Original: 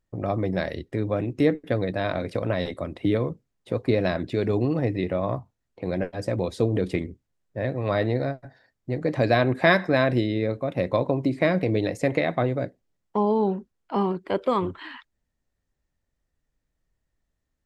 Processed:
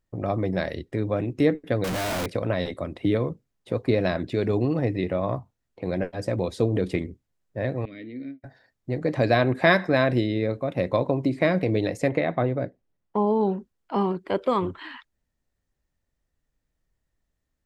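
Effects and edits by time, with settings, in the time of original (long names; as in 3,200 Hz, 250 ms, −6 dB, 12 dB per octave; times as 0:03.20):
0:01.84–0:02.26: sign of each sample alone
0:07.85–0:08.44: formant filter i
0:12.09–0:13.41: high-shelf EQ 4,000 Hz −12 dB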